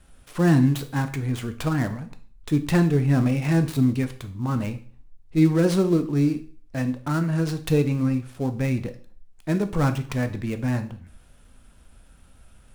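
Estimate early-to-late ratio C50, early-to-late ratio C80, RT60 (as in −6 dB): 13.5 dB, 18.0 dB, 0.45 s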